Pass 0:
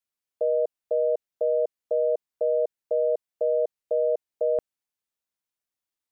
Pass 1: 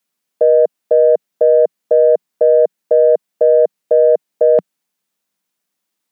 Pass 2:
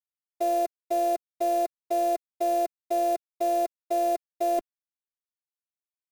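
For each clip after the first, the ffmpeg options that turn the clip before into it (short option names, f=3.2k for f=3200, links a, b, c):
-af "lowshelf=f=130:t=q:w=3:g=-11,acontrast=65,volume=6.5dB"
-af "acrusher=bits=5:dc=4:mix=0:aa=0.000001,afftfilt=real='hypot(re,im)*cos(PI*b)':imag='0':win_size=512:overlap=0.75,volume=-8.5dB"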